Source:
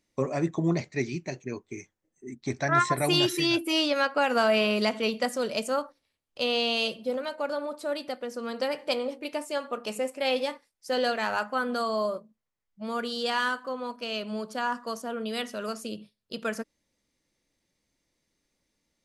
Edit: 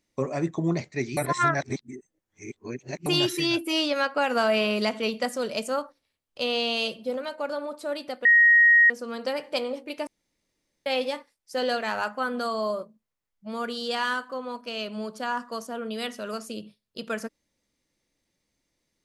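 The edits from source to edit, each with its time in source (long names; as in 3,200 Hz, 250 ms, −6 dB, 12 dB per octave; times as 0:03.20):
0:01.17–0:03.06: reverse
0:08.25: insert tone 1,880 Hz −13 dBFS 0.65 s
0:09.42–0:10.21: fill with room tone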